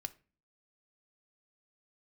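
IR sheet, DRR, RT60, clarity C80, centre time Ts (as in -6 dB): 8.5 dB, 0.35 s, 25.5 dB, 2 ms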